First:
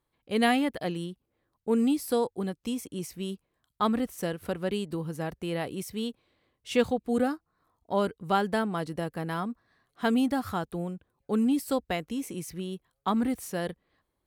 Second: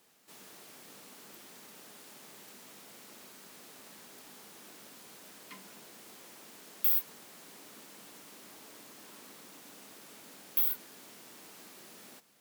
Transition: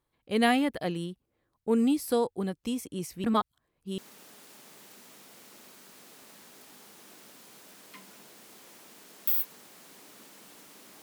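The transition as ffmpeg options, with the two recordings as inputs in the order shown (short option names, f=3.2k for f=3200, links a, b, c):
-filter_complex "[0:a]apad=whole_dur=11.02,atrim=end=11.02,asplit=2[a][b];[a]atrim=end=3.242[c];[b]atrim=start=3.238:end=3.982,asetpts=PTS-STARTPTS,areverse[d];[1:a]atrim=start=1.548:end=8.59[e];[c][d]acrossfade=d=0.004:c1=hsin:c2=hsin[f];[f][e]acrossfade=d=0.004:c1=hsin:c2=hsin"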